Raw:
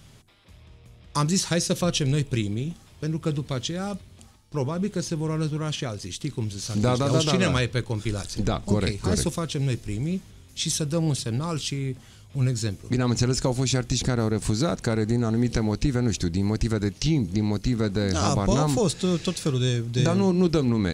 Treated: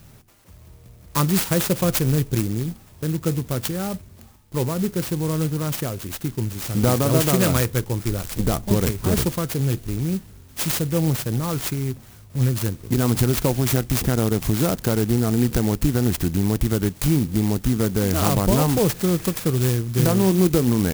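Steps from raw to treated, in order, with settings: sampling jitter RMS 0.096 ms; trim +3.5 dB

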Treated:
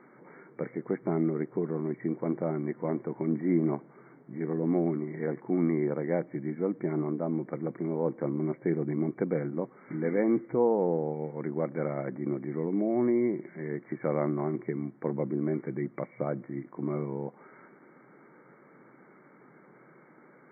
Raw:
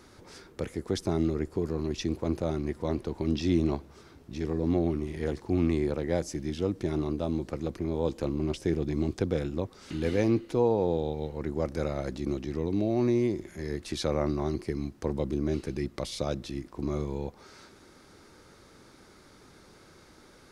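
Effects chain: FFT band-pass 120–2300 Hz

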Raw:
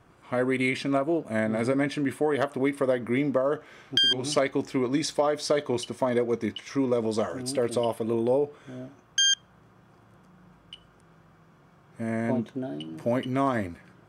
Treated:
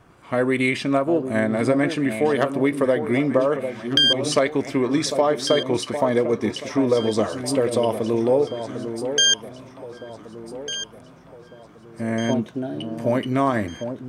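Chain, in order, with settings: echo whose repeats swap between lows and highs 750 ms, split 1 kHz, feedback 63%, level -8.5 dB; trim +5 dB

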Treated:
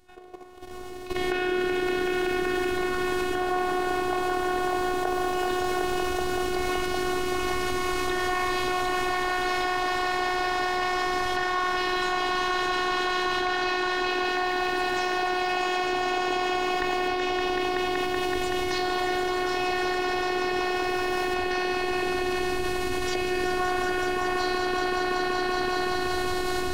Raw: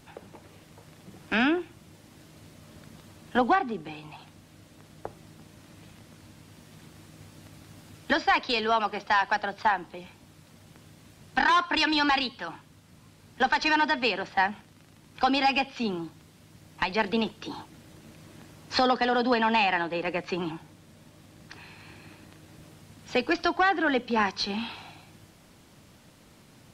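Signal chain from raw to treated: spectral sustain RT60 1.53 s; recorder AGC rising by 16 dB/s; tilt EQ -1.5 dB/octave; hum notches 50/100/150/200/250/300 Hz; on a send: echo with a slow build-up 189 ms, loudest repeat 5, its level -6 dB; on the sum: ever faster or slower copies 118 ms, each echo +4 st, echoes 2, each echo -6 dB; level held to a coarse grid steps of 11 dB; robot voice 364 Hz; trim -2 dB

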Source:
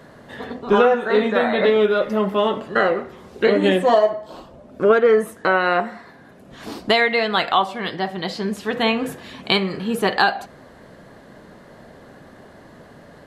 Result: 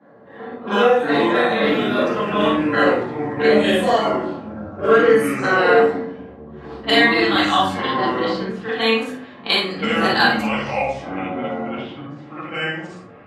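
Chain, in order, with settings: short-time spectra conjugated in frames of 116 ms; high-pass 130 Hz; tilt EQ +2.5 dB/octave; level-controlled noise filter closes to 890 Hz, open at -19 dBFS; ever faster or slower copies 88 ms, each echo -6 st, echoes 3, each echo -6 dB; simulated room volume 190 m³, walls furnished, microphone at 2.2 m; trim -1 dB

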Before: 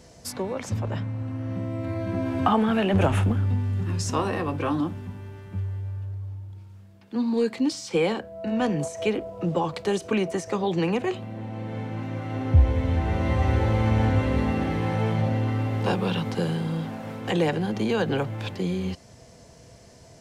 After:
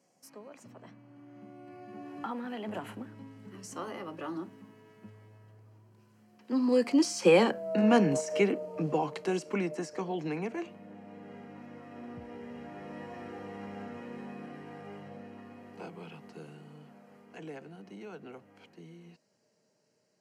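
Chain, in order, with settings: Doppler pass-by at 7.60 s, 31 m/s, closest 20 m; high-pass 170 Hz 24 dB/octave; band-stop 3.6 kHz, Q 5; trim +3 dB

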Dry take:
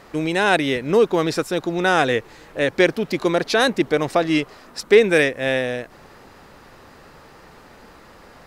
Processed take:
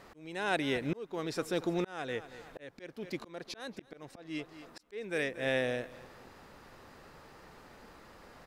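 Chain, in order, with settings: feedback delay 232 ms, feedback 34%, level -20 dB; slow attack 730 ms; trim -8.5 dB

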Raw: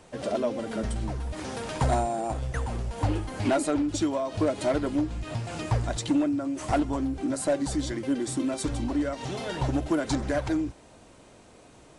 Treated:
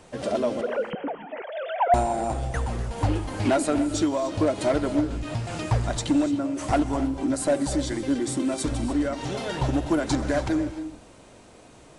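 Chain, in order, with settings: 0.61–1.94 s: formants replaced by sine waves; gated-style reverb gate 320 ms rising, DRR 11 dB; trim +2.5 dB

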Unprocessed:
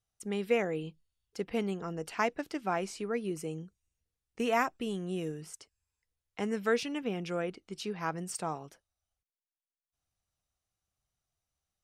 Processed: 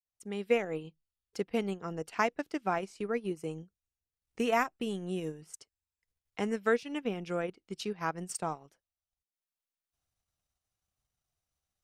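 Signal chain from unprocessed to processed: fade-in on the opening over 0.56 s; transient shaper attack +2 dB, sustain -11 dB

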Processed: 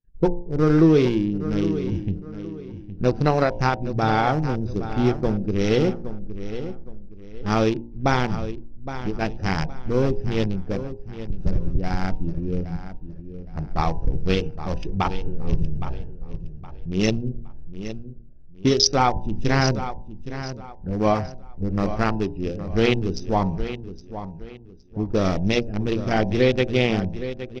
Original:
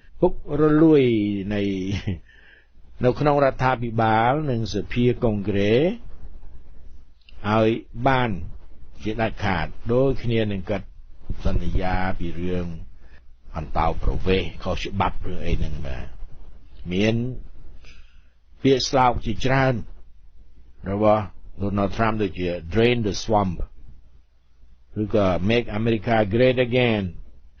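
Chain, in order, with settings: local Wiener filter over 41 samples; peaking EQ 5.7 kHz +12.5 dB 0.46 oct; de-hum 58.34 Hz, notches 17; expander -36 dBFS; graphic EQ with 31 bands 160 Hz +5 dB, 630 Hz -4 dB, 5 kHz +5 dB; on a send: feedback delay 816 ms, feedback 32%, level -11.5 dB; on the sum: tape noise reduction on one side only decoder only

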